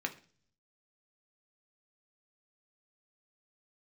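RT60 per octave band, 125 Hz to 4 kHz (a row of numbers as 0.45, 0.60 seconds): 0.95, 0.70, 0.50, 0.40, 0.40, 0.55 seconds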